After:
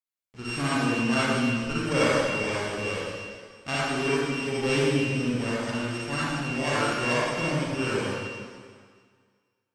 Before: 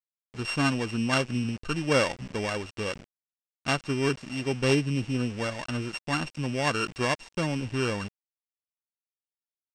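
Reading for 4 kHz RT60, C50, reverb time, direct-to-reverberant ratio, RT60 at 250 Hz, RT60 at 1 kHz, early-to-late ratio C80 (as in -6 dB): 1.8 s, -6.5 dB, 1.9 s, -9.0 dB, 1.7 s, 1.9 s, -3.5 dB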